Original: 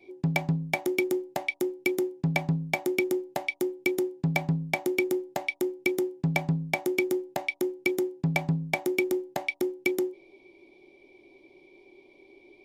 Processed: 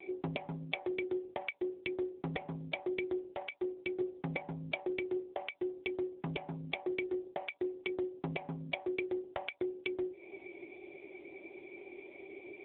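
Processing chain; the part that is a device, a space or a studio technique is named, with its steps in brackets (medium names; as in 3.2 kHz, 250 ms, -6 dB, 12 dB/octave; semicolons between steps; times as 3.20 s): voicemail (band-pass 400–2900 Hz; compression 6:1, threshold -43 dBFS, peak gain reduction 19 dB; trim +10.5 dB; AMR-NB 6.7 kbps 8 kHz)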